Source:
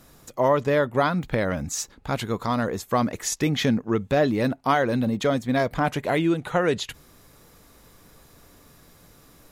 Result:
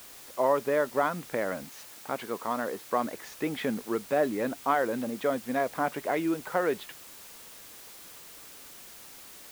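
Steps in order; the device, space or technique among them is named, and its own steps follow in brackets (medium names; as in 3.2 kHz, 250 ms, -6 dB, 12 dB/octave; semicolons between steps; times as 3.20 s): wax cylinder (band-pass 300–2100 Hz; wow and flutter; white noise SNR 17 dB); 1.63–3.05 s: high-pass 130 Hz 6 dB/octave; trim -4 dB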